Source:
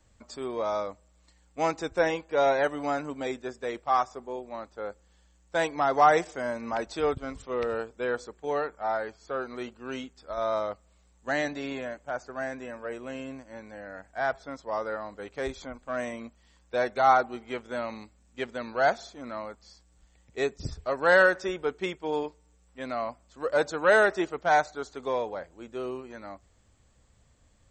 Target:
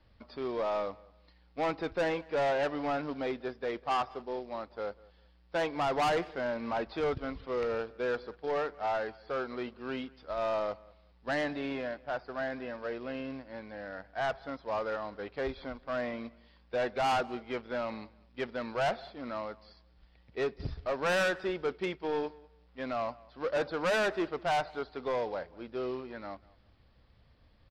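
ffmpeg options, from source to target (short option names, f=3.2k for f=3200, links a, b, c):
-filter_complex "[0:a]acrossover=split=3700[a][b];[b]acompressor=threshold=-60dB:ratio=4:attack=1:release=60[c];[a][c]amix=inputs=2:normalize=0,aresample=11025,acrusher=bits=5:mode=log:mix=0:aa=0.000001,aresample=44100,asoftclip=type=tanh:threshold=-25.5dB,asplit=2[d][e];[e]adelay=195,lowpass=f=4.3k:p=1,volume=-23dB,asplit=2[f][g];[g]adelay=195,lowpass=f=4.3k:p=1,volume=0.24[h];[d][f][h]amix=inputs=3:normalize=0"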